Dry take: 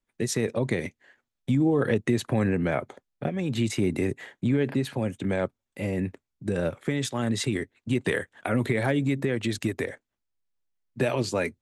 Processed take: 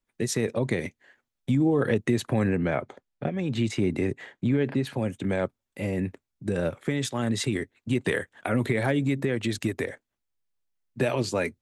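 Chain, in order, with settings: 2.56–4.87 air absorption 53 m

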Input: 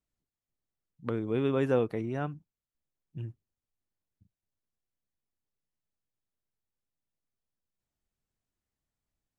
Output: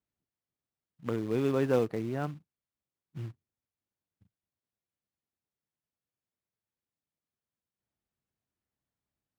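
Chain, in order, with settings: short-mantissa float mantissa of 2-bit; HPF 77 Hz; high shelf 4500 Hz -10.5 dB

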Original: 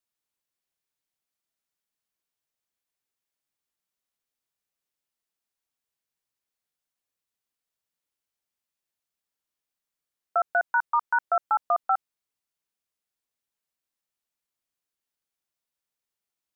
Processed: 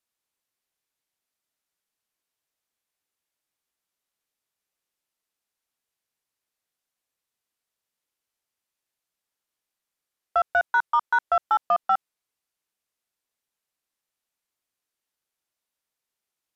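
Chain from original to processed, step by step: tone controls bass -3 dB, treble -1 dB; in parallel at -5.5 dB: soft clip -23 dBFS, distortion -12 dB; on the sum: downsampling 32000 Hz

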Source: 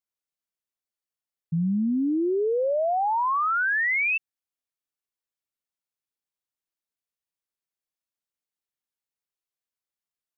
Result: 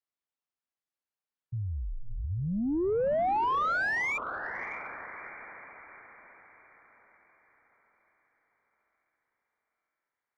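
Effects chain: diffused feedback echo 0.615 s, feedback 46%, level -12.5 dB; frequency shift -280 Hz; overdrive pedal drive 13 dB, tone 1300 Hz, clips at -16 dBFS; gain -4.5 dB

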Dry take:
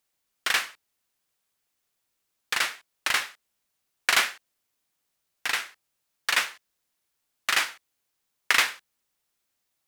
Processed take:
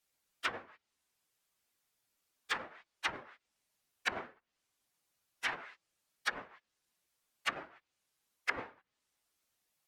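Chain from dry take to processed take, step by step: phase scrambler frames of 50 ms; treble ducked by the level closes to 470 Hz, closed at -23 dBFS; gain -2 dB

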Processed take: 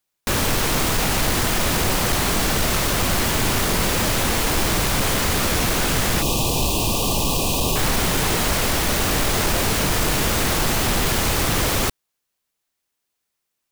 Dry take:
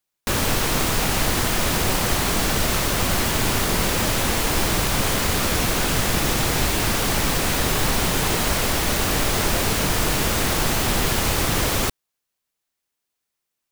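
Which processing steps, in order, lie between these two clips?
soft clip -14.5 dBFS, distortion -18 dB; spectral gain 6.22–7.76, 1200–2400 Hz -24 dB; gain +2.5 dB

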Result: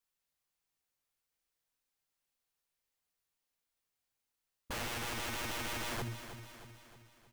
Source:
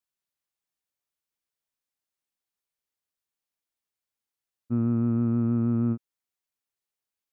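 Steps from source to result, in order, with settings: bell 220 Hz -5.5 dB 0.66 oct; echo 0.161 s -19 dB; limiter -23 dBFS, peak gain reduction 3 dB; notches 50/100/150/200 Hz; on a send at -3.5 dB: reverb, pre-delay 4 ms; on the sum: wrapped overs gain 36 dB; low shelf 140 Hz +5 dB; lo-fi delay 0.313 s, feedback 55%, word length 12-bit, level -10.5 dB; gain +1 dB

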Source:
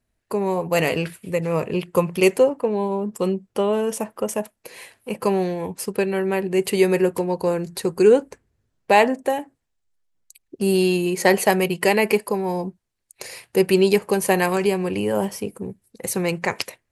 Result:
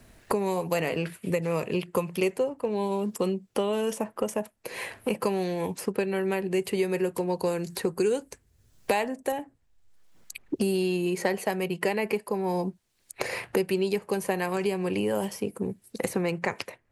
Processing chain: high shelf 4100 Hz -2 dB, from 7.7 s +8.5 dB, from 9.32 s -4 dB; three-band squash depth 100%; gain -7.5 dB

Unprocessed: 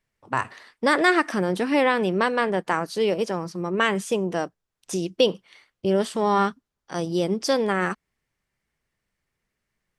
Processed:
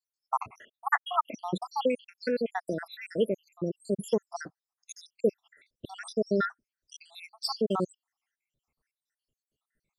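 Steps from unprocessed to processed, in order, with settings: random spectral dropouts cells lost 83%

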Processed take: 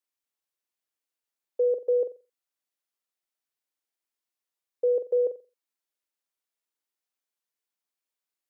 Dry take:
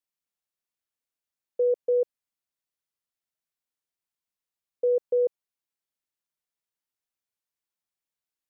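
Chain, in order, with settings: HPF 240 Hz 24 dB/oct; flutter echo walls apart 7.6 m, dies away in 0.29 s

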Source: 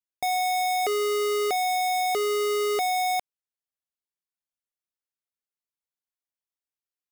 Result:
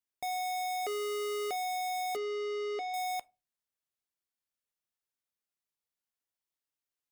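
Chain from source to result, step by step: limiter -34.5 dBFS, peak gain reduction 10 dB; 2.16–2.94 speaker cabinet 270–5000 Hz, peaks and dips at 300 Hz +7 dB, 880 Hz -6 dB, 1400 Hz -7 dB, 2700 Hz -4 dB, 3900 Hz -5 dB; reverb RT60 0.30 s, pre-delay 7 ms, DRR 15 dB

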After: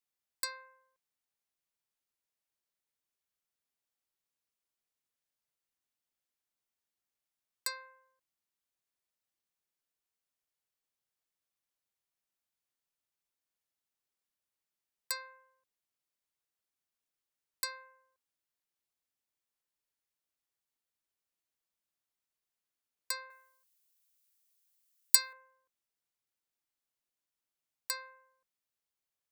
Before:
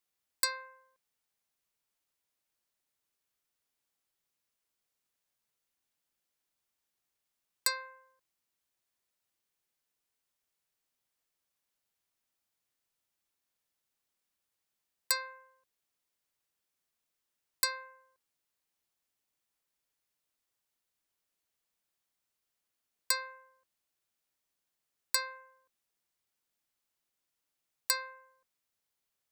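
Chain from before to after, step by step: 23.3–25.33 tilt +4.5 dB/oct; gain -6.5 dB

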